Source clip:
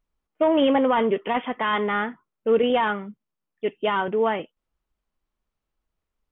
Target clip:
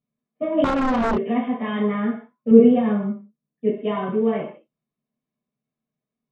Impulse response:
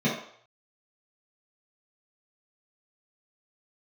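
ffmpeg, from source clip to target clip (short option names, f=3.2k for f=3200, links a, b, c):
-filter_complex "[1:a]atrim=start_sample=2205,afade=t=out:st=0.27:d=0.01,atrim=end_sample=12348[a];[0:a][a]afir=irnorm=-1:irlink=0,asettb=1/sr,asplit=3[b][c][d];[b]atrim=end=0.644[e];[c]atrim=start=0.64:end=1.18,asetpts=PTS-STARTPTS,afade=t=in:d=0.004:c=qsin,afade=t=out:st=0.536:d=0.004:c=qsin,acontrast=67[f];[d]atrim=start=1.176[g];[e][f]acrossfade=d=0.004:c1=hsin:c2=qsin[h];[h][g]acrossfade=d=0.004:c1=qsin:c2=hsin,asettb=1/sr,asplit=3[i][j][k];[i]atrim=end=2.514[l];[j]atrim=start=2.51:end=3.78,asetpts=PTS-STARTPTS,afade=t=in:d=0.004:c=qsin,afade=t=out:st=1.266:d=0.004:c=qsin,tiltshelf=f=790:g=5[m];[k]atrim=start=3.776[n];[l][m]acrossfade=d=0.004:c1=hsin:c2=qsin[o];[o][n]acrossfade=d=0.004:c1=qsin:c2=hsin,volume=-17dB"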